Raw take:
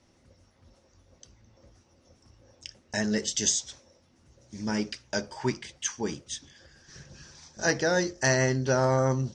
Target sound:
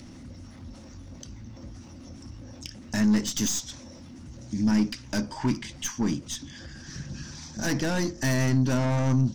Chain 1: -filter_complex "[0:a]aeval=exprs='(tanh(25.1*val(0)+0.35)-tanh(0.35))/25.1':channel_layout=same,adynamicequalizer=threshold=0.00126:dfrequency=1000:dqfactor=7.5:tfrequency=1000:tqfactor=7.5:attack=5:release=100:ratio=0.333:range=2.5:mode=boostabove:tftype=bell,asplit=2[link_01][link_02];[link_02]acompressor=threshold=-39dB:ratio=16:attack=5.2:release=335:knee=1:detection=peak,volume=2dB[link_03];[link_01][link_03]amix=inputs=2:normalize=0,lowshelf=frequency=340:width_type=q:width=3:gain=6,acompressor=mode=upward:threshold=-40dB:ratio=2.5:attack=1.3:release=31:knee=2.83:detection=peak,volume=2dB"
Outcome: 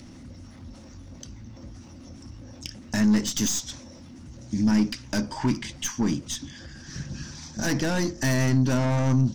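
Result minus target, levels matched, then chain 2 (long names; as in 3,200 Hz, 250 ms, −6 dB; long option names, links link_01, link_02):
downward compressor: peak gain reduction −9 dB
-filter_complex "[0:a]aeval=exprs='(tanh(25.1*val(0)+0.35)-tanh(0.35))/25.1':channel_layout=same,adynamicequalizer=threshold=0.00126:dfrequency=1000:dqfactor=7.5:tfrequency=1000:tqfactor=7.5:attack=5:release=100:ratio=0.333:range=2.5:mode=boostabove:tftype=bell,asplit=2[link_01][link_02];[link_02]acompressor=threshold=-48.5dB:ratio=16:attack=5.2:release=335:knee=1:detection=peak,volume=2dB[link_03];[link_01][link_03]amix=inputs=2:normalize=0,lowshelf=frequency=340:width_type=q:width=3:gain=6,acompressor=mode=upward:threshold=-40dB:ratio=2.5:attack=1.3:release=31:knee=2.83:detection=peak,volume=2dB"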